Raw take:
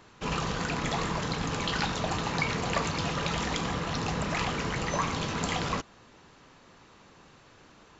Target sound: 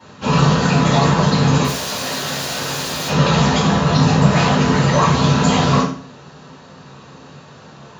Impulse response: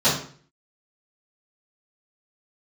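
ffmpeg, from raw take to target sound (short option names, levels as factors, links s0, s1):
-filter_complex "[0:a]asettb=1/sr,asplit=3[s0][s1][s2];[s0]atrim=end=1.644[s3];[s1]atrim=start=1.64:end=3.08,asetpts=PTS-STARTPTS,afade=t=in:d=0.004:c=qsin,afade=t=out:st=1.436:d=0.004:c=qsin,aeval=exprs='(mod(35.5*val(0)+1,2)-1)/35.5':c=same[s4];[s2]atrim=start=3.076[s5];[s3][s4]acrossfade=d=0.004:c1=hsin:c2=qsin[s6];[s6][s5]acrossfade=d=0.004:c1=qsin:c2=hsin[s7];[1:a]atrim=start_sample=2205[s8];[s7][s8]afir=irnorm=-1:irlink=0,volume=0.562"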